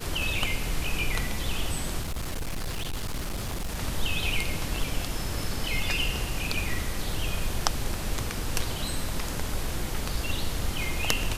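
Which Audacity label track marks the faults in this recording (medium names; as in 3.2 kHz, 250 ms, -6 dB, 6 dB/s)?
2.010000	3.760000	clipped -27.5 dBFS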